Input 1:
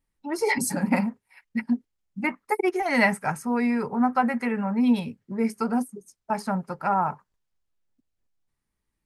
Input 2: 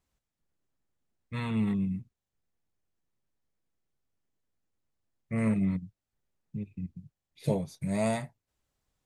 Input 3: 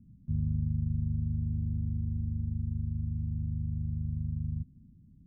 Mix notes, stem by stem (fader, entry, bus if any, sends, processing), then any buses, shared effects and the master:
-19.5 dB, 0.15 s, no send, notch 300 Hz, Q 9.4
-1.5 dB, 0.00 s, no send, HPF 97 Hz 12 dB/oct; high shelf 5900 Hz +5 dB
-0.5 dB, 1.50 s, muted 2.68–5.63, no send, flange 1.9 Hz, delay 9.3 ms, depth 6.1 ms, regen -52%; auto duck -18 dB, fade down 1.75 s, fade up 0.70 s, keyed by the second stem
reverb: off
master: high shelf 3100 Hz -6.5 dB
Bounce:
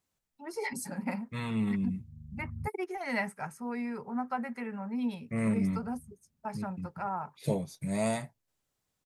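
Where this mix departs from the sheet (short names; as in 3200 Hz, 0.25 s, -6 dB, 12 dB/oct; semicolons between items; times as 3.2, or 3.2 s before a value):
stem 1 -19.5 dB -> -11.5 dB; master: missing high shelf 3100 Hz -6.5 dB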